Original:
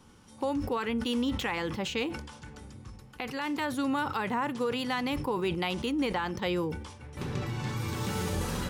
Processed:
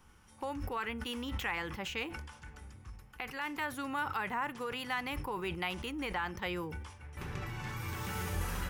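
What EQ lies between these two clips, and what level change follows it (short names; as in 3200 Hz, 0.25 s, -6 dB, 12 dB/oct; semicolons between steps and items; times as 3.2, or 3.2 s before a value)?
ten-band EQ 125 Hz -9 dB, 250 Hz -11 dB, 500 Hz -9 dB, 1000 Hz -4 dB, 4000 Hz -10 dB, 8000 Hz -7 dB; +2.5 dB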